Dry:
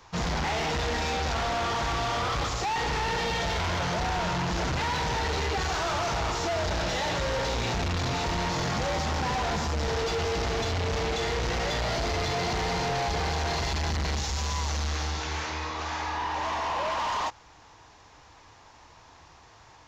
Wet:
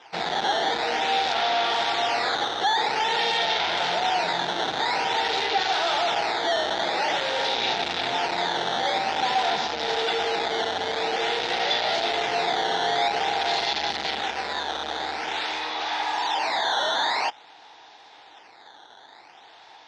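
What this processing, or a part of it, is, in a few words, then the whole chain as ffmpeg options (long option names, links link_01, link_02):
circuit-bent sampling toy: -af "acrusher=samples=10:mix=1:aa=0.000001:lfo=1:lforange=16:lforate=0.49,highpass=440,equalizer=frequency=550:width_type=q:width=4:gain=-4,equalizer=frequency=790:width_type=q:width=4:gain=6,equalizer=frequency=1100:width_type=q:width=4:gain=-9,equalizer=frequency=3600:width_type=q:width=4:gain=8,lowpass=frequency=5300:width=0.5412,lowpass=frequency=5300:width=1.3066,volume=5.5dB"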